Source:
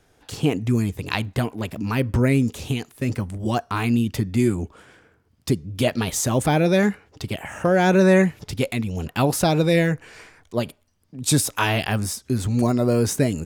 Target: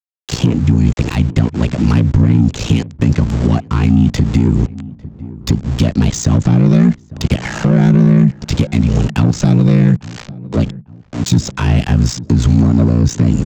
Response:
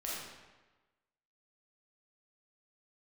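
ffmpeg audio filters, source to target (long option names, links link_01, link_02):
-filter_complex "[0:a]aeval=exprs='val(0)*sin(2*PI*29*n/s)':channel_layout=same,aresample=16000,aeval=exprs='val(0)*gte(abs(val(0)),0.0106)':channel_layout=same,aresample=44100,acrossover=split=260[link_01][link_02];[link_02]acompressor=threshold=-36dB:ratio=8[link_03];[link_01][link_03]amix=inputs=2:normalize=0,acrossover=split=250[link_04][link_05];[link_05]asoftclip=type=tanh:threshold=-34dB[link_06];[link_04][link_06]amix=inputs=2:normalize=0,asplit=2[link_07][link_08];[link_08]adelay=850,lowpass=frequency=940:poles=1,volume=-20.5dB,asplit=2[link_09][link_10];[link_10]adelay=850,lowpass=frequency=940:poles=1,volume=0.43,asplit=2[link_11][link_12];[link_12]adelay=850,lowpass=frequency=940:poles=1,volume=0.43[link_13];[link_07][link_09][link_11][link_13]amix=inputs=4:normalize=0,alimiter=level_in=20.5dB:limit=-1dB:release=50:level=0:latency=1,volume=-1.5dB"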